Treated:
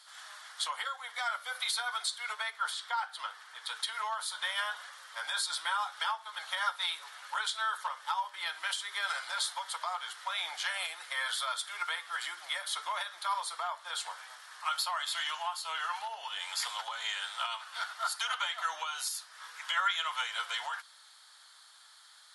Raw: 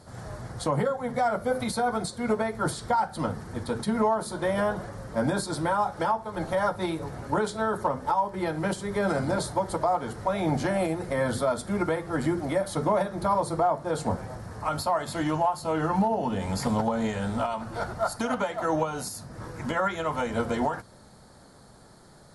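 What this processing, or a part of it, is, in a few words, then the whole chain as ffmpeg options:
headphones lying on a table: -filter_complex "[0:a]highpass=f=1.2k:w=0.5412,highpass=f=1.2k:w=1.3066,equalizer=f=3.3k:t=o:w=0.55:g=12,asettb=1/sr,asplit=3[a][b][c];[a]atrim=end=2.504[d];[b]atrim=start=2.5:end=3.64,asetpts=PTS-STARTPTS,afade=t=in:d=0.004:c=qsin,afade=t=out:st=1.136:d=0.004:c=qsin,highshelf=f=3.7k:g=-7.5[e];[c]atrim=start=3.636[f];[d][e]acrossfade=d=0.004:c1=hsin:c2=qsin[g];[g][f]acrossfade=d=0.004:c1=qsin:c2=hsin"

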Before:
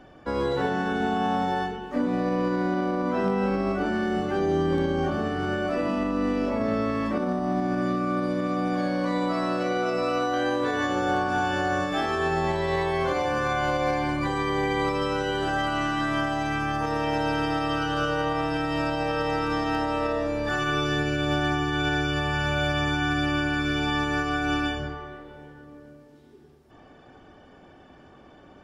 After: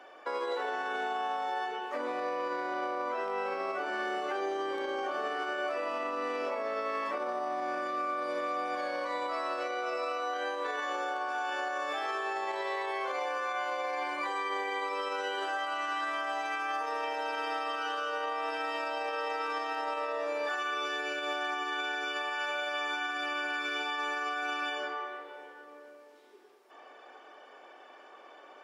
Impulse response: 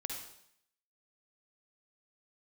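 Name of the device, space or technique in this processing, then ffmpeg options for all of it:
laptop speaker: -af "highpass=f=430:w=0.5412,highpass=f=430:w=1.3066,equalizer=f=1.1k:t=o:w=0.55:g=4,equalizer=f=2.3k:t=o:w=0.55:g=4,alimiter=level_in=1.5dB:limit=-24dB:level=0:latency=1:release=118,volume=-1.5dB"

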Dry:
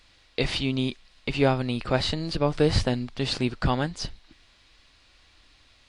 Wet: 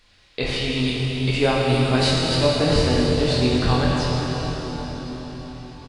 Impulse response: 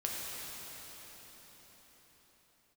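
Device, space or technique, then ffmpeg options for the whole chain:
cathedral: -filter_complex "[0:a]asettb=1/sr,asplit=3[a][b][c];[a]atrim=end=0.874[d];[b]atrim=start=0.87:end=2.43,asetpts=PTS-STARTPTS,afade=t=in:d=0.004:c=qsin,afade=t=out:st=1.556:d=0.004:c=qsin,aemphasis=mode=production:type=50kf[e];[c]atrim=start=2.426[f];[d][e]acrossfade=d=0.004:c1=hsin:c2=qsin[g];[g][f]acrossfade=d=0.004:c1=qsin:c2=hsin,asplit=2[h][i];[i]adelay=24,volume=-5dB[j];[h][j]amix=inputs=2:normalize=0[k];[1:a]atrim=start_sample=2205[l];[k][l]afir=irnorm=-1:irlink=0"

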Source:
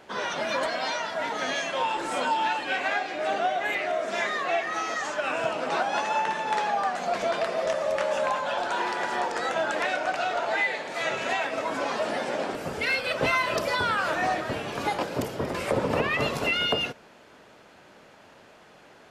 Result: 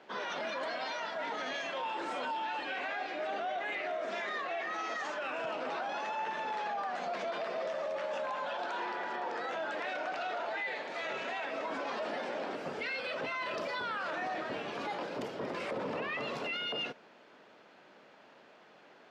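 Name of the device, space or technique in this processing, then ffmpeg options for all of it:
DJ mixer with the lows and highs turned down: -filter_complex "[0:a]asettb=1/sr,asplit=3[a][b][c];[a]atrim=end=8.864[d];[b]atrim=start=8.86:end=9.49,asetpts=PTS-STARTPTS,afade=t=in:d=0.004:c=qsin,afade=t=out:st=0.626:d=0.004:c=qsin,highshelf=f=4.2k:g=-7[e];[c]atrim=start=9.486[f];[d][e]acrossfade=d=0.004:c1=hsin:c2=qsin[g];[g][f]acrossfade=d=0.004:c1=qsin:c2=hsin,acrossover=split=160 5700:gain=0.1 1 0.1[h][i][j];[h][i][j]amix=inputs=3:normalize=0,alimiter=limit=-23.5dB:level=0:latency=1:release=16,volume=-5.5dB"

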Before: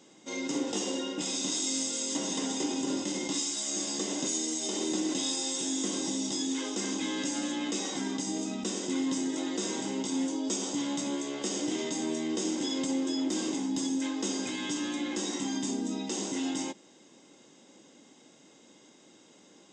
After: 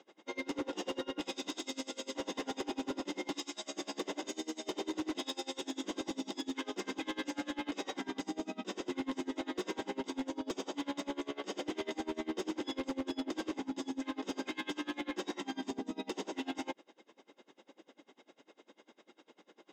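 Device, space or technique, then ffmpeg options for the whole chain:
helicopter radio: -af "highpass=360,lowpass=2.8k,aeval=exprs='val(0)*pow(10,-27*(0.5-0.5*cos(2*PI*10*n/s))/20)':c=same,asoftclip=type=hard:threshold=-36dB,volume=5.5dB"

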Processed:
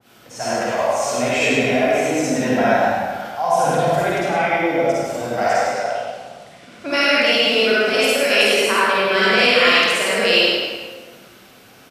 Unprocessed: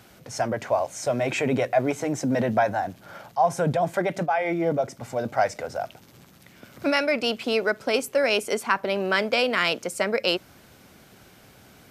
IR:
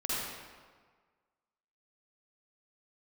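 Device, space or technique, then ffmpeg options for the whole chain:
PA in a hall: -filter_complex "[0:a]asettb=1/sr,asplit=3[a][b][c];[a]atrim=end=5.634[d];[b]atrim=start=5.63:end=6.88,asetpts=PTS-STARTPTS,afade=t=in:d=0.004:c=qsin,afade=t=out:st=1.246:d=0.004:c=qsin,lowpass=f=10k:w=0.5412,lowpass=f=10k:w=1.3066[e];[c]atrim=start=6.876[f];[d][e]acrossfade=d=0.004:c1=hsin:c2=qsin[g];[g][f]acrossfade=d=0.004:c1=qsin:c2=hsin,highpass=f=170:p=1,equalizer=f=3k:t=o:w=0.77:g=3,aecho=1:1:103:0.562[h];[1:a]atrim=start_sample=2205[i];[h][i]afir=irnorm=-1:irlink=0,asplit=5[j][k][l][m][n];[k]adelay=106,afreqshift=-37,volume=-16.5dB[o];[l]adelay=212,afreqshift=-74,volume=-24dB[p];[m]adelay=318,afreqshift=-111,volume=-31.6dB[q];[n]adelay=424,afreqshift=-148,volume=-39.1dB[r];[j][o][p][q][r]amix=inputs=5:normalize=0,adynamicequalizer=threshold=0.0282:dfrequency=1700:dqfactor=0.7:tfrequency=1700:tqfactor=0.7:attack=5:release=100:ratio=0.375:range=2.5:mode=boostabove:tftype=highshelf,volume=-1.5dB"

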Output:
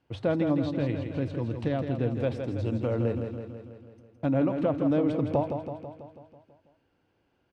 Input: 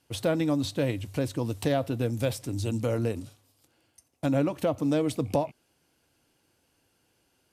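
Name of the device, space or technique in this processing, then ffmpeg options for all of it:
phone in a pocket: -filter_complex "[0:a]asettb=1/sr,asplit=3[a][b][c];[a]atrim=end=0.704[d];[b]atrim=start=0.7:end=1.98,asetpts=PTS-STARTPTS,afade=t=in:d=0.004:c=qsin,afade=t=out:st=1.276:d=0.004:c=qsin,equalizer=f=700:t=o:w=1.8:g=-5[e];[c]atrim=start=1.976[f];[d][e]acrossfade=d=0.004:c1=hsin:c2=qsin[g];[g][f]acrossfade=d=0.004:c1=qsin:c2=hsin,lowpass=3.3k,highshelf=f=2.5k:g=-9,aecho=1:1:164|328|492|656|820|984|1148|1312:0.447|0.268|0.161|0.0965|0.0579|0.0347|0.0208|0.0125"

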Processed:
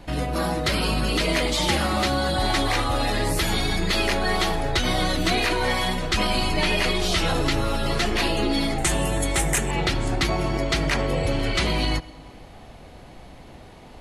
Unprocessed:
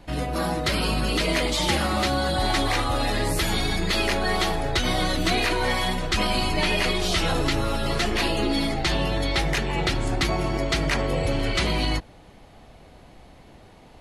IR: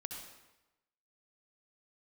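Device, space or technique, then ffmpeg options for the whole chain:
ducked reverb: -filter_complex "[0:a]asplit=3[a][b][c];[1:a]atrim=start_sample=2205[d];[b][d]afir=irnorm=-1:irlink=0[e];[c]apad=whole_len=617495[f];[e][f]sidechaincompress=threshold=-38dB:ratio=8:attack=47:release=336,volume=-0.5dB[g];[a][g]amix=inputs=2:normalize=0,asettb=1/sr,asplit=3[h][i][j];[h]atrim=end=8.784[k];[i]atrim=start=8.78:end=9.71,asetpts=PTS-STARTPTS,afade=t=in:d=0.004:c=qsin,afade=t=out:st=0.926:d=0.004:c=qsin,highshelf=f=6.1k:t=q:w=3:g=10.5[l];[j]atrim=start=9.706[m];[k][l]acrossfade=d=0.004:c1=hsin:c2=qsin[n];[n][m]acrossfade=d=0.004:c1=qsin:c2=hsin"

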